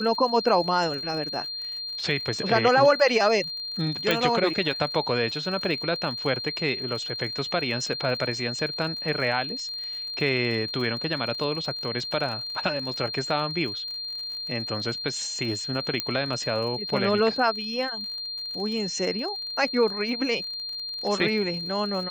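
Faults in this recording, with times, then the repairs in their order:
surface crackle 53 per second −35 dBFS
whistle 4,200 Hz −31 dBFS
0:04.11: click −8 dBFS
0:16.00: click −9 dBFS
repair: click removal
notch filter 4,200 Hz, Q 30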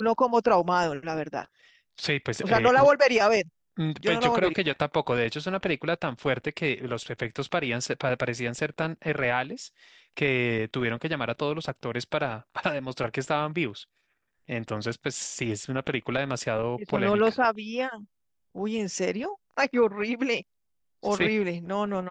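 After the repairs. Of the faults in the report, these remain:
0:04.11: click
0:16.00: click

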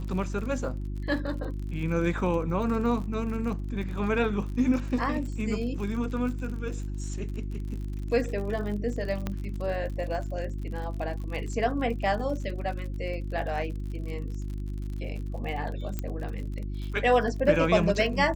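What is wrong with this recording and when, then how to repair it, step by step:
surface crackle 50 per second −36 dBFS
mains hum 50 Hz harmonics 7 −33 dBFS
0:09.27: click −17 dBFS
0:15.99: click −18 dBFS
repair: click removal
hum removal 50 Hz, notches 7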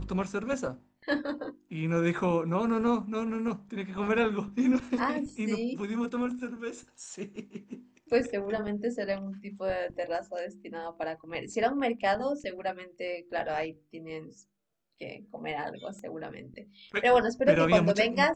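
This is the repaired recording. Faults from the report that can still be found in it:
0:15.99: click

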